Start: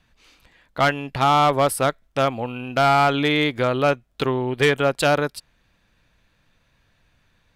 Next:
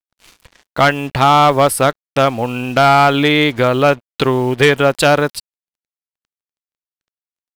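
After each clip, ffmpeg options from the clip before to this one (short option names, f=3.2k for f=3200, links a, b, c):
-filter_complex "[0:a]asplit=2[a][b];[b]acompressor=threshold=-27dB:ratio=8,volume=-1.5dB[c];[a][c]amix=inputs=2:normalize=0,acrusher=bits=6:mix=0:aa=0.5,volume=5dB"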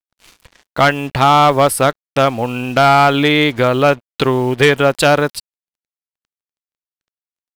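-af anull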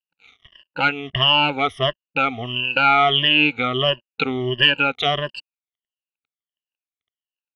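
-af "afftfilt=real='re*pow(10,24/40*sin(2*PI*(1.3*log(max(b,1)*sr/1024/100)/log(2)-(-1.5)*(pts-256)/sr)))':imag='im*pow(10,24/40*sin(2*PI*(1.3*log(max(b,1)*sr/1024/100)/log(2)-(-1.5)*(pts-256)/sr)))':win_size=1024:overlap=0.75,lowpass=f=2.9k:t=q:w=10,volume=-15dB"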